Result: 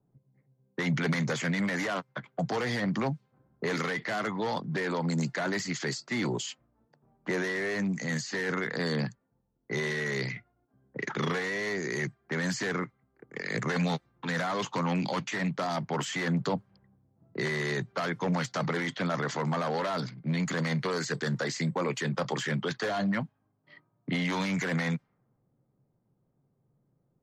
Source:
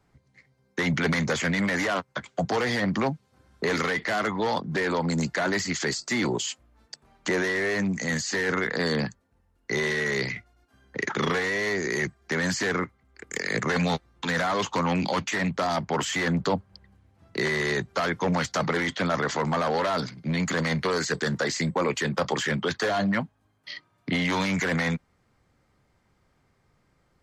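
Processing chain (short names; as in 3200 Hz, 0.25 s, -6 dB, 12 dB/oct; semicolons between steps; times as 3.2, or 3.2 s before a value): low-pass opened by the level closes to 570 Hz, open at -23 dBFS; resonant low shelf 100 Hz -7.5 dB, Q 3; gain -5.5 dB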